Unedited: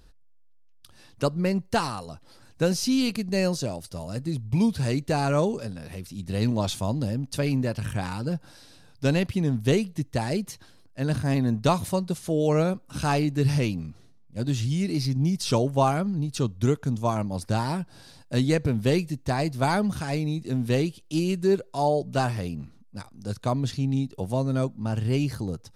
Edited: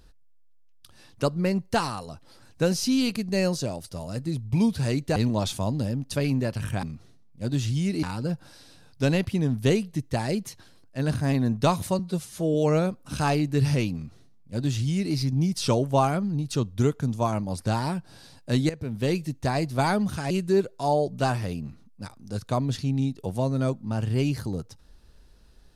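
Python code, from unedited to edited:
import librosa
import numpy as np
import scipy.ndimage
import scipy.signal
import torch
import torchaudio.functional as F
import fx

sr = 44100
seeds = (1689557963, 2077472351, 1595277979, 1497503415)

y = fx.edit(x, sr, fx.cut(start_s=5.16, length_s=1.22),
    fx.stretch_span(start_s=12.01, length_s=0.37, factor=1.5),
    fx.duplicate(start_s=13.78, length_s=1.2, to_s=8.05),
    fx.fade_in_from(start_s=18.53, length_s=0.57, floor_db=-15.0),
    fx.cut(start_s=20.14, length_s=1.11), tone=tone)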